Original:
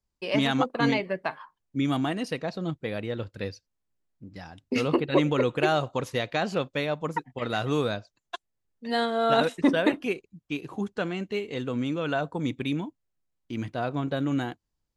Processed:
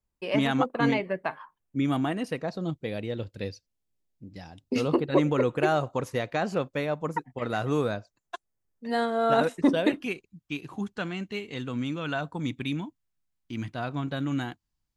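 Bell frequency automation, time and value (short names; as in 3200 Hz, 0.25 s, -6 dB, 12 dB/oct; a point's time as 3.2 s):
bell -7.5 dB 1.1 oct
2.29 s 4700 Hz
2.85 s 1300 Hz
4.45 s 1300 Hz
5.3 s 3500 Hz
9.57 s 3500 Hz
10.1 s 480 Hz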